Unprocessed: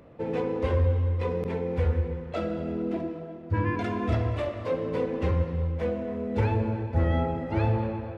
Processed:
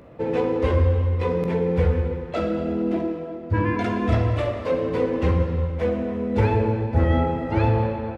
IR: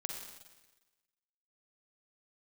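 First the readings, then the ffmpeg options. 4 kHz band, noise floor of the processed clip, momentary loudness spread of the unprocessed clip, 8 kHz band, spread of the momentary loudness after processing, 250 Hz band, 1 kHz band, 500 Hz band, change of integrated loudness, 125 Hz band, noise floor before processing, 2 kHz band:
+5.5 dB, -34 dBFS, 6 LU, n/a, 6 LU, +6.0 dB, +6.0 dB, +6.0 dB, +5.5 dB, +4.5 dB, -40 dBFS, +5.5 dB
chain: -filter_complex "[0:a]asplit=2[a][b];[b]adelay=16,volume=-12.5dB[c];[a][c]amix=inputs=2:normalize=0,asplit=2[d][e];[1:a]atrim=start_sample=2205[f];[e][f]afir=irnorm=-1:irlink=0,volume=0dB[g];[d][g]amix=inputs=2:normalize=0"

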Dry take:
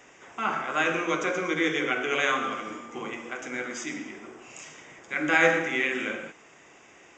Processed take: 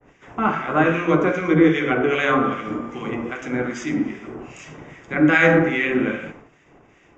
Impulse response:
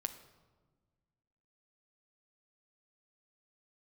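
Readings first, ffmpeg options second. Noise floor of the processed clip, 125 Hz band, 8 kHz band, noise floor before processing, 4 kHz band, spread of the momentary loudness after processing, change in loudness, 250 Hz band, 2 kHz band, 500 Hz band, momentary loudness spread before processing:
-55 dBFS, +17.0 dB, -4.0 dB, -54 dBFS, 0.0 dB, 19 LU, +7.0 dB, +13.0 dB, +4.0 dB, +8.5 dB, 21 LU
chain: -filter_complex "[0:a]aemphasis=mode=reproduction:type=riaa,agate=range=-33dB:threshold=-45dB:ratio=3:detection=peak,acrossover=split=1500[a][b];[a]aeval=exprs='val(0)*(1-0.7/2+0.7/2*cos(2*PI*2.5*n/s))':c=same[c];[b]aeval=exprs='val(0)*(1-0.7/2-0.7/2*cos(2*PI*2.5*n/s))':c=same[d];[c][d]amix=inputs=2:normalize=0,asplit=2[e][f];[1:a]atrim=start_sample=2205,atrim=end_sample=6174[g];[f][g]afir=irnorm=-1:irlink=0,volume=7.5dB[h];[e][h]amix=inputs=2:normalize=0,adynamicequalizer=threshold=0.0251:dfrequency=2700:dqfactor=0.7:tfrequency=2700:tqfactor=0.7:attack=5:release=100:ratio=0.375:range=2:mode=cutabove:tftype=highshelf"

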